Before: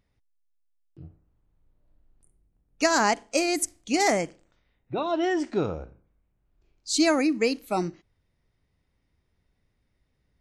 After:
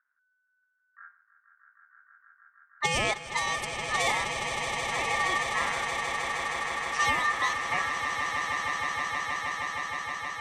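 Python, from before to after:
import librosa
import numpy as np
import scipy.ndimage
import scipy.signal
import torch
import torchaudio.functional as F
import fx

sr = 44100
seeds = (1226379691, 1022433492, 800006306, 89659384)

y = fx.env_lowpass(x, sr, base_hz=460.0, full_db=-18.5)
y = y * np.sin(2.0 * np.pi * 1500.0 * np.arange(len(y)) / sr)
y = fx.echo_swell(y, sr, ms=157, loudest=8, wet_db=-10.0)
y = F.gain(torch.from_numpy(y), -2.5).numpy()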